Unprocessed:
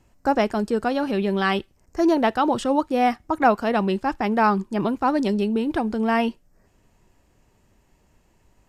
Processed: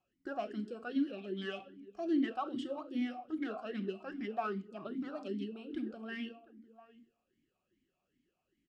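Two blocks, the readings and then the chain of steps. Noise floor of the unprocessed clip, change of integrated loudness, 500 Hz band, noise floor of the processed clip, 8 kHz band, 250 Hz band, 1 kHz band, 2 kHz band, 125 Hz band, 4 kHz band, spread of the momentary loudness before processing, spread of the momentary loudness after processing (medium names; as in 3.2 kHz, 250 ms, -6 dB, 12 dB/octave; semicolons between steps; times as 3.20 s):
-62 dBFS, -16.5 dB, -18.5 dB, -85 dBFS, no reading, -14.5 dB, -21.5 dB, -18.5 dB, under -15 dB, -15.5 dB, 5 LU, 8 LU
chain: peaking EQ 570 Hz -13.5 dB 1.9 oct; overload inside the chain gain 21.5 dB; peaking EQ 2.2 kHz -6 dB 1.1 oct; echo from a far wall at 120 m, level -19 dB; simulated room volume 840 m³, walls furnished, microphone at 0.98 m; talking filter a-i 2.5 Hz; trim +2 dB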